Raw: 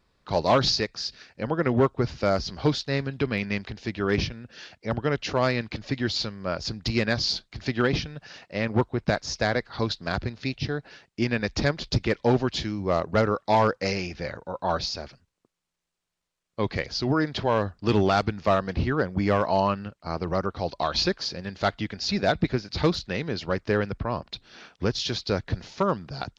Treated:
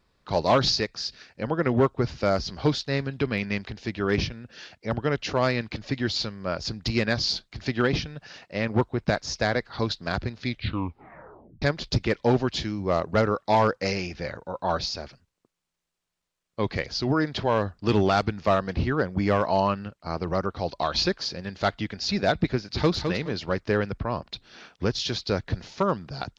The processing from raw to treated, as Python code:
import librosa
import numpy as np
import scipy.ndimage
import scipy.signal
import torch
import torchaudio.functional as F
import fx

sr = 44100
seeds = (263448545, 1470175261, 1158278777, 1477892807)

y = fx.echo_throw(x, sr, start_s=22.55, length_s=0.41, ms=210, feedback_pct=25, wet_db=-6.5)
y = fx.edit(y, sr, fx.tape_stop(start_s=10.4, length_s=1.22), tone=tone)